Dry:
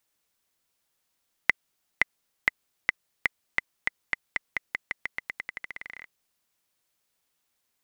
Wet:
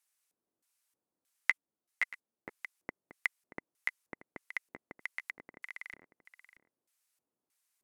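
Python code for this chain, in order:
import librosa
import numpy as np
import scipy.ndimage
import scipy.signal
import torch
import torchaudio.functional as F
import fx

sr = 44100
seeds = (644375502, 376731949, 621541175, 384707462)

p1 = fx.curve_eq(x, sr, hz=(1000.0, 3300.0, 10000.0), db=(0, -9, 13))
p2 = fx.filter_lfo_bandpass(p1, sr, shape='square', hz=1.6, low_hz=310.0, high_hz=2700.0, q=1.2)
p3 = p2 + fx.echo_single(p2, sr, ms=631, db=-14.5, dry=0)
p4 = fx.ensemble(p3, sr, at=(1.5, 2.48), fade=0.02)
y = F.gain(torch.from_numpy(p4), 2.0).numpy()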